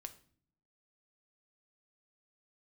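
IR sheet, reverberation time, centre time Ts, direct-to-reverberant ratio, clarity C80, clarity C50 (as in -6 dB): no single decay rate, 5 ms, 7.5 dB, 19.0 dB, 15.0 dB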